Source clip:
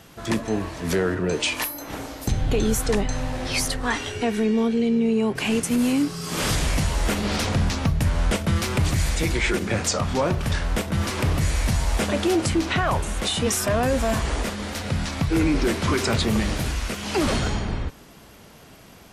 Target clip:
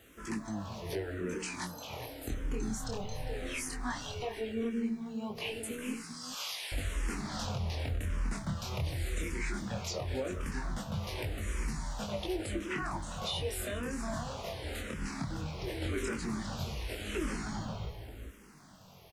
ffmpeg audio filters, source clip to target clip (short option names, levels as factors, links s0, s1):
-filter_complex "[0:a]asettb=1/sr,asplit=3[s0][s1][s2];[s0]atrim=end=5.924[s3];[s1]atrim=start=5.92:end=6.72,asetpts=PTS-STARTPTS,afade=t=in:d=0.004:c=qsin,afade=t=out:st=0.796:d=0.004:c=qsin,highpass=1300[s4];[s2]atrim=start=6.716[s5];[s3][s4]acrossfade=d=0.004:c1=hsin:c2=qsin[s6];[s6][s5]acrossfade=d=0.004:c1=qsin:c2=hsin,acompressor=threshold=0.0562:ratio=3,acrusher=bits=9:mix=0:aa=0.000001,flanger=delay=18.5:depth=7.9:speed=0.17,asplit=2[s7][s8];[s8]adelay=402.3,volume=0.447,highshelf=f=4000:g=-9.05[s9];[s7][s9]amix=inputs=2:normalize=0,asplit=2[s10][s11];[s11]afreqshift=-0.88[s12];[s10][s12]amix=inputs=2:normalize=1,volume=0.631"